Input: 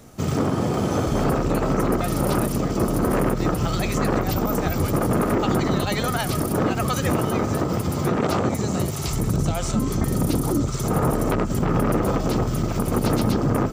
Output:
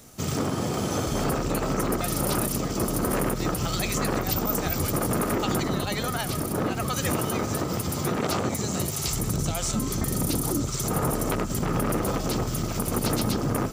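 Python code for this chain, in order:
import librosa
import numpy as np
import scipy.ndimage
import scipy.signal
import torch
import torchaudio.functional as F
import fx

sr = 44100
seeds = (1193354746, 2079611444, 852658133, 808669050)

y = fx.high_shelf(x, sr, hz=2600.0, db=fx.steps((0.0, 10.5), (5.62, 4.0), (6.97, 10.0)))
y = fx.echo_thinned(y, sr, ms=849, feedback_pct=78, hz=420.0, wet_db=-21.0)
y = F.gain(torch.from_numpy(y), -5.5).numpy()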